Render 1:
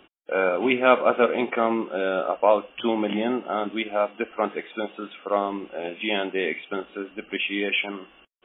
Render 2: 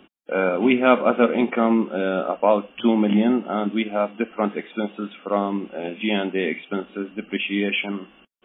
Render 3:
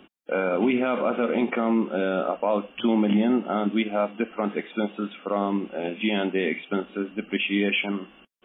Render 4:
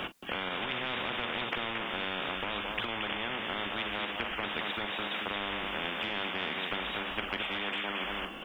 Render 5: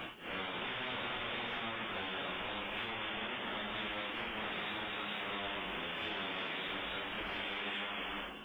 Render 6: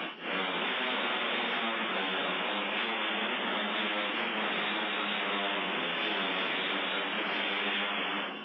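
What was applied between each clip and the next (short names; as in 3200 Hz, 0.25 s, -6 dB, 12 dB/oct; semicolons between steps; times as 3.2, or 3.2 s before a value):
bell 210 Hz +11 dB 0.89 oct
limiter -13.5 dBFS, peak gain reduction 11.5 dB
compressor 3:1, threshold -28 dBFS, peak gain reduction 8.5 dB; on a send: tapped delay 43/225 ms -15.5/-12.5 dB; on the sum: spectral compressor 10:1
phase scrambler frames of 0.2 s; gain -5 dB
brick-wall FIR band-pass 160–5800 Hz; gain +8 dB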